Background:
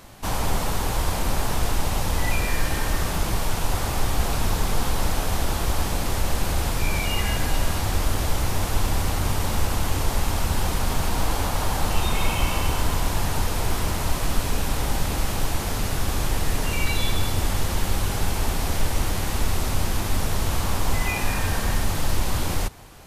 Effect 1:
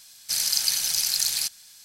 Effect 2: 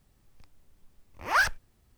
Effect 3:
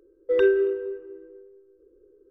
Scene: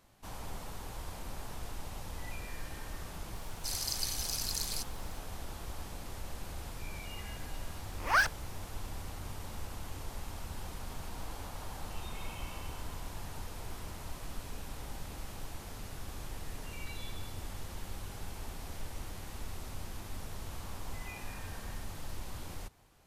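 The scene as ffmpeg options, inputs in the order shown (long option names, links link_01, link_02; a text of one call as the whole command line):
ffmpeg -i bed.wav -i cue0.wav -i cue1.wav -filter_complex "[0:a]volume=-19dB[link_01];[1:a]acrusher=bits=8:dc=4:mix=0:aa=0.000001[link_02];[2:a]dynaudnorm=framelen=210:gausssize=3:maxgain=11dB[link_03];[link_02]atrim=end=1.84,asetpts=PTS-STARTPTS,volume=-12.5dB,afade=type=in:duration=0.004:curve=hsin,afade=type=out:start_time=1.836:duration=0.004:curve=hsin,adelay=3350[link_04];[link_03]atrim=end=1.97,asetpts=PTS-STARTPTS,volume=-13dB,afade=type=in:duration=0.004:curve=hsin,afade=type=out:start_time=1.966:duration=0.004:curve=hsin,adelay=6790[link_05];[link_01][link_04][link_05]amix=inputs=3:normalize=0" out.wav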